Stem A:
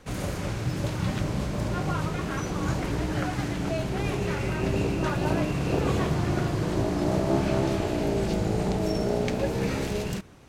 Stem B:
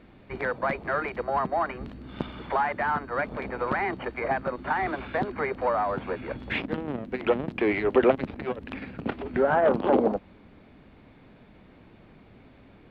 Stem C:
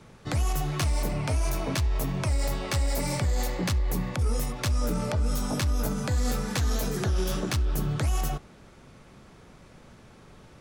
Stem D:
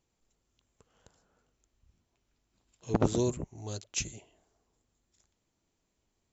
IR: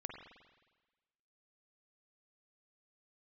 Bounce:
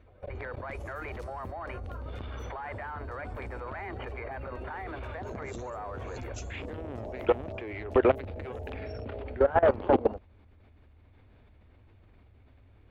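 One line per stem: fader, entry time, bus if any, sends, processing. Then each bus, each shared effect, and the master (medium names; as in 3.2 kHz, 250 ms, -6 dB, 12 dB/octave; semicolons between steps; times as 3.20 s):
-8.5 dB, 0.00 s, no send, spectral gate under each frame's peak -20 dB strong; resonant low shelf 350 Hz -11 dB, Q 3
+2.0 dB, 0.00 s, no send, resonant low shelf 120 Hz +9.5 dB, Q 3
1.29 s -8 dB -> 1.77 s -19.5 dB, 0.40 s, no send, feedback comb 250 Hz, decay 1.2 s, mix 70%
-3.5 dB, 2.40 s, no send, none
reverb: none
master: level held to a coarse grid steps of 19 dB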